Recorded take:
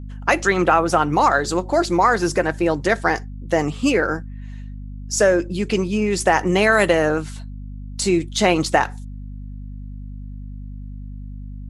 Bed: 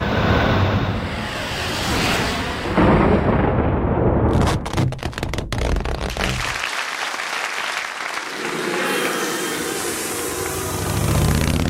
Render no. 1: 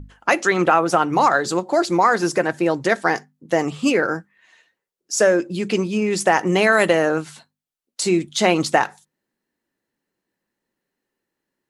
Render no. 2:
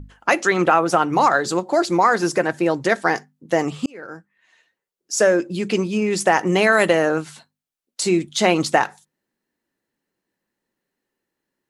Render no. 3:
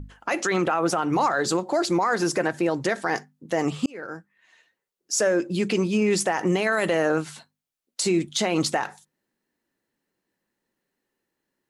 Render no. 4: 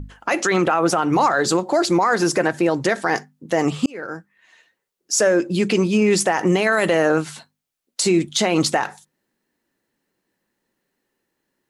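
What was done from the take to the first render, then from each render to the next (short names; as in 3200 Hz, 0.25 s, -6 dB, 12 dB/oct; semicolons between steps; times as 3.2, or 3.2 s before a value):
notches 50/100/150/200/250 Hz
3.86–5.49 fade in equal-power
limiter -13.5 dBFS, peak gain reduction 11.5 dB
gain +5 dB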